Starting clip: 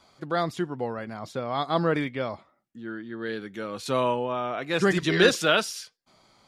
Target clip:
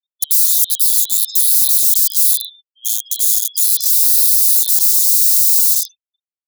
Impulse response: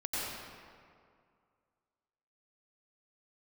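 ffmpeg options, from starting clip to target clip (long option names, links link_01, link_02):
-filter_complex "[0:a]afftfilt=real='real(if(lt(b,272),68*(eq(floor(b/68),0)*1+eq(floor(b/68),1)*3+eq(floor(b/68),2)*0+eq(floor(b/68),3)*2)+mod(b,68),b),0)':imag='imag(if(lt(b,272),68*(eq(floor(b/68),0)*1+eq(floor(b/68),1)*3+eq(floor(b/68),2)*0+eq(floor(b/68),3)*2)+mod(b,68),b),0)':win_size=2048:overlap=0.75,acrossover=split=8100[link_01][link_02];[link_02]acompressor=threshold=-58dB:ratio=4:attack=1:release=60[link_03];[link_01][link_03]amix=inputs=2:normalize=0,aecho=1:1:0.8:0.86,asplit=2[link_04][link_05];[link_05]adelay=138,lowpass=frequency=5000:poles=1,volume=-10dB,asplit=2[link_06][link_07];[link_07]adelay=138,lowpass=frequency=5000:poles=1,volume=0.23,asplit=2[link_08][link_09];[link_09]adelay=138,lowpass=frequency=5000:poles=1,volume=0.23[link_10];[link_06][link_08][link_10]amix=inputs=3:normalize=0[link_11];[link_04][link_11]amix=inputs=2:normalize=0,afftfilt=real='re*gte(hypot(re,im),0.0112)':imag='im*gte(hypot(re,im),0.0112)':win_size=1024:overlap=0.75,asplit=2[link_12][link_13];[link_13]acompressor=threshold=-36dB:ratio=8,volume=-2dB[link_14];[link_12][link_14]amix=inputs=2:normalize=0,alimiter=limit=-14.5dB:level=0:latency=1:release=28,aeval=exprs='(mod(28.2*val(0)+1,2)-1)/28.2':channel_layout=same,asuperstop=centerf=1500:order=8:qfactor=0.52,aderivative,afftdn=noise_reduction=22:noise_floor=-53,firequalizer=gain_entry='entry(260,0);entry(1100,-15);entry(2600,8);entry(4200,15)':delay=0.05:min_phase=1,volume=4.5dB"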